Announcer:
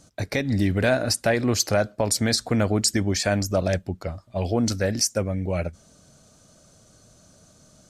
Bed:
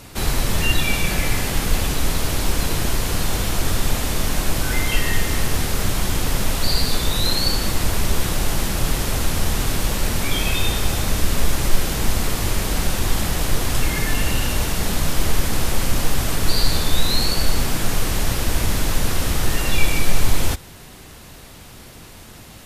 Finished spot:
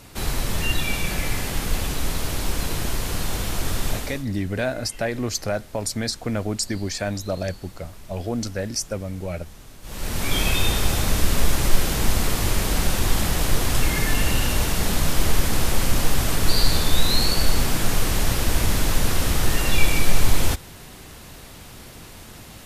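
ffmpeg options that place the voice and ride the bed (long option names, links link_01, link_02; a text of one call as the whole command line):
ffmpeg -i stem1.wav -i stem2.wav -filter_complex "[0:a]adelay=3750,volume=-4dB[link_01];[1:a]volume=18.5dB,afade=type=out:start_time=3.9:duration=0.35:silence=0.112202,afade=type=in:start_time=9.82:duration=0.56:silence=0.0707946[link_02];[link_01][link_02]amix=inputs=2:normalize=0" out.wav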